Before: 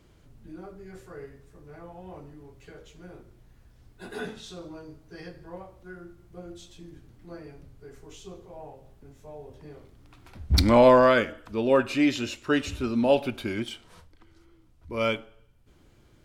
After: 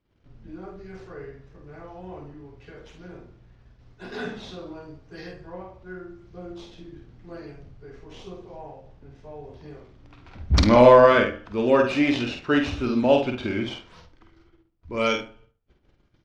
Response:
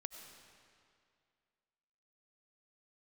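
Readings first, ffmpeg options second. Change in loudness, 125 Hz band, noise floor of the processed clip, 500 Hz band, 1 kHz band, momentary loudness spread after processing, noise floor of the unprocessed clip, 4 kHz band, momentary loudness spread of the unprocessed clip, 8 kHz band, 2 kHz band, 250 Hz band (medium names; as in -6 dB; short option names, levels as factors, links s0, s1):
+3.5 dB, +3.0 dB, -65 dBFS, +4.0 dB, +4.0 dB, 25 LU, -58 dBFS, +2.0 dB, 24 LU, no reading, +3.5 dB, +2.5 dB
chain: -filter_complex "[0:a]agate=range=0.1:threshold=0.00178:ratio=16:detection=peak,acrossover=split=3800[s0][s1];[s1]acrusher=samples=24:mix=1:aa=0.000001:lfo=1:lforange=38.4:lforate=0.91[s2];[s0][s2]amix=inputs=2:normalize=0,lowpass=f=5800:t=q:w=2.5,asplit=2[s3][s4];[s4]adelay=49,volume=0.562[s5];[s3][s5]amix=inputs=2:normalize=0,asplit=2[s6][s7];[s7]adelay=73,lowpass=f=1600:p=1,volume=0.282,asplit=2[s8][s9];[s9]adelay=73,lowpass=f=1600:p=1,volume=0.24,asplit=2[s10][s11];[s11]adelay=73,lowpass=f=1600:p=1,volume=0.24[s12];[s6][s8][s10][s12]amix=inputs=4:normalize=0,volume=1.26"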